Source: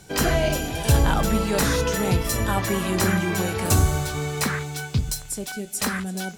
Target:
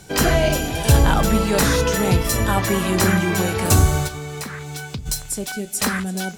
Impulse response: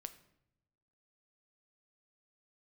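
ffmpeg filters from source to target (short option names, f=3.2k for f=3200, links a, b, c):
-filter_complex "[0:a]asplit=3[a][b][c];[a]afade=t=out:st=4.07:d=0.02[d];[b]acompressor=threshold=-31dB:ratio=12,afade=t=in:st=4.07:d=0.02,afade=t=out:st=5.05:d=0.02[e];[c]afade=t=in:st=5.05:d=0.02[f];[d][e][f]amix=inputs=3:normalize=0,volume=4dB"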